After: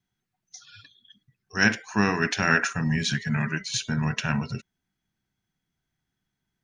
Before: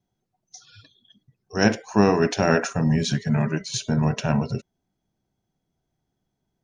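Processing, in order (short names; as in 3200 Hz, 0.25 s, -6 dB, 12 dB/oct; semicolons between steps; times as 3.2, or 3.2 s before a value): EQ curve 210 Hz 0 dB, 600 Hz -8 dB, 1700 Hz +11 dB, 5200 Hz +4 dB; gain -4.5 dB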